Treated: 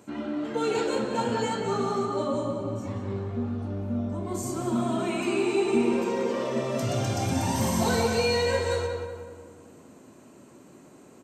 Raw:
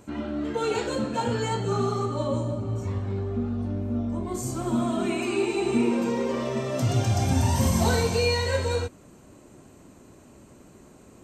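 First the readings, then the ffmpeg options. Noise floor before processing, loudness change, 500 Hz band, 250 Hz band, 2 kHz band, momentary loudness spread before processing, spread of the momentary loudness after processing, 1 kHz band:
-52 dBFS, -1.0 dB, +0.5 dB, -1.0 dB, 0.0 dB, 7 LU, 9 LU, +0.5 dB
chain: -filter_complex "[0:a]highpass=150,asplit=2[s0][s1];[s1]volume=10,asoftclip=hard,volume=0.1,volume=0.376[s2];[s0][s2]amix=inputs=2:normalize=0,asplit=2[s3][s4];[s4]adelay=184,lowpass=f=2400:p=1,volume=0.668,asplit=2[s5][s6];[s6]adelay=184,lowpass=f=2400:p=1,volume=0.51,asplit=2[s7][s8];[s8]adelay=184,lowpass=f=2400:p=1,volume=0.51,asplit=2[s9][s10];[s10]adelay=184,lowpass=f=2400:p=1,volume=0.51,asplit=2[s11][s12];[s12]adelay=184,lowpass=f=2400:p=1,volume=0.51,asplit=2[s13][s14];[s14]adelay=184,lowpass=f=2400:p=1,volume=0.51,asplit=2[s15][s16];[s16]adelay=184,lowpass=f=2400:p=1,volume=0.51[s17];[s3][s5][s7][s9][s11][s13][s15][s17]amix=inputs=8:normalize=0,volume=0.631"

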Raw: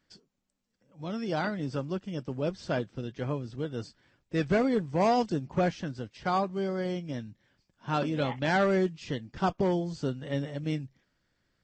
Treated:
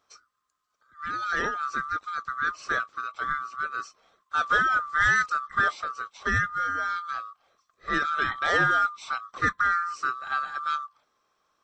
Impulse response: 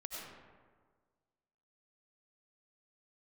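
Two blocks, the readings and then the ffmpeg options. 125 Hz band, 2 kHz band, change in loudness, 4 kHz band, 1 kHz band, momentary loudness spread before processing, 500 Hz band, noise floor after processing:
-8.5 dB, +14.0 dB, +4.0 dB, +4.0 dB, +7.0 dB, 12 LU, -9.5 dB, -75 dBFS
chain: -af "afftfilt=real='real(if(lt(b,960),b+48*(1-2*mod(floor(b/48),2)),b),0)':imag='imag(if(lt(b,960),b+48*(1-2*mod(floor(b/48),2)),b),0)':win_size=2048:overlap=0.75,volume=1.33"

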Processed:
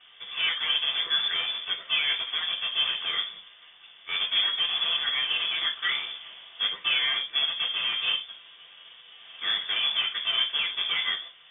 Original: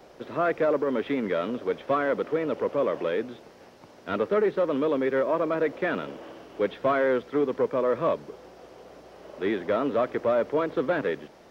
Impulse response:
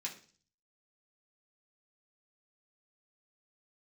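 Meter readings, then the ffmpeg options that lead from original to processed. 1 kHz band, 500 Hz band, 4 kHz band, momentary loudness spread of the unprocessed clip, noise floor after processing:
-9.0 dB, -27.0 dB, +25.0 dB, 11 LU, -53 dBFS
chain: -filter_complex "[0:a]acrusher=bits=2:mode=log:mix=0:aa=0.000001[s0];[1:a]atrim=start_sample=2205,afade=t=out:st=0.14:d=0.01,atrim=end_sample=6615[s1];[s0][s1]afir=irnorm=-1:irlink=0,lowpass=f=3100:t=q:w=0.5098,lowpass=f=3100:t=q:w=0.6013,lowpass=f=3100:t=q:w=0.9,lowpass=f=3100:t=q:w=2.563,afreqshift=-3700,volume=1.19"

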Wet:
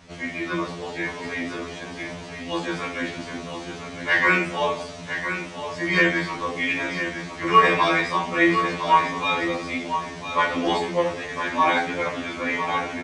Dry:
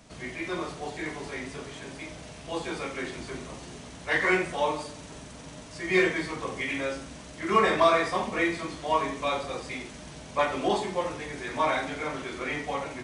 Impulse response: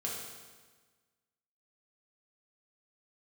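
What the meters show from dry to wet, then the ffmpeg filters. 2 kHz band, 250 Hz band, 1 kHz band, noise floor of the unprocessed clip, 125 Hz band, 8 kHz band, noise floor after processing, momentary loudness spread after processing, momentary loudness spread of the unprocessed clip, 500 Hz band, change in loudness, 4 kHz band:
+7.5 dB, +5.5 dB, +7.0 dB, -45 dBFS, +6.0 dB, +1.5 dB, -37 dBFS, 14 LU, 17 LU, +2.0 dB, +5.5 dB, +6.5 dB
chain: -filter_complex "[0:a]lowpass=6100,equalizer=f=2600:w=1.5:g=2,asplit=2[s0][s1];[s1]aecho=0:1:1007:0.355[s2];[s0][s2]amix=inputs=2:normalize=0,afftfilt=real='re*2*eq(mod(b,4),0)':imag='im*2*eq(mod(b,4),0)':win_size=2048:overlap=0.75,volume=2.37"

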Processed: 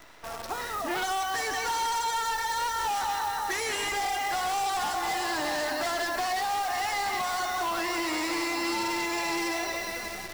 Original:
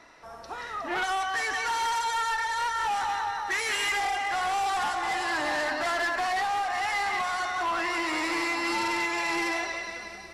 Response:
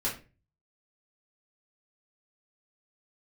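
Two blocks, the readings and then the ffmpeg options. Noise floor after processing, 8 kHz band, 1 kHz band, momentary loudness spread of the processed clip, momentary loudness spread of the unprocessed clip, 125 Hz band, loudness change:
-38 dBFS, +3.5 dB, -1.0 dB, 3 LU, 5 LU, no reading, -1.0 dB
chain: -filter_complex "[0:a]asplit=2[s0][s1];[1:a]atrim=start_sample=2205,adelay=47[s2];[s1][s2]afir=irnorm=-1:irlink=0,volume=0.0473[s3];[s0][s3]amix=inputs=2:normalize=0,acrusher=bits=8:dc=4:mix=0:aa=0.000001,acrossover=split=910|3400[s4][s5][s6];[s4]acompressor=threshold=0.0158:ratio=4[s7];[s5]acompressor=threshold=0.00708:ratio=4[s8];[s6]acompressor=threshold=0.01:ratio=4[s9];[s7][s8][s9]amix=inputs=3:normalize=0,volume=1.88"

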